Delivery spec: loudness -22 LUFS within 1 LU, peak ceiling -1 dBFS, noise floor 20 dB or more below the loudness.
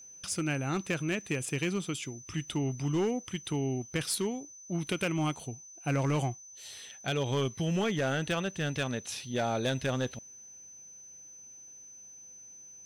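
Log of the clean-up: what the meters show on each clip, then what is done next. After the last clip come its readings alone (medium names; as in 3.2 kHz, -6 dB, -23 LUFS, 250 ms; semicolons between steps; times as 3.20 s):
clipped samples 1.1%; clipping level -24.0 dBFS; steady tone 6.1 kHz; tone level -48 dBFS; loudness -32.5 LUFS; peak level -24.0 dBFS; loudness target -22.0 LUFS
-> clip repair -24 dBFS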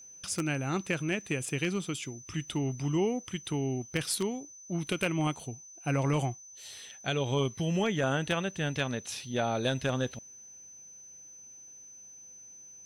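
clipped samples 0.0%; steady tone 6.1 kHz; tone level -48 dBFS
-> band-stop 6.1 kHz, Q 30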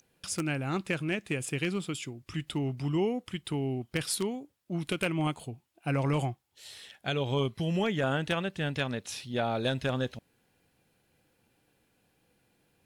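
steady tone not found; loudness -32.0 LUFS; peak level -15.0 dBFS; loudness target -22.0 LUFS
-> trim +10 dB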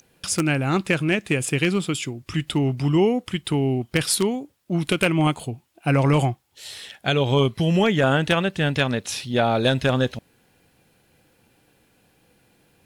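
loudness -22.0 LUFS; peak level -5.0 dBFS; noise floor -62 dBFS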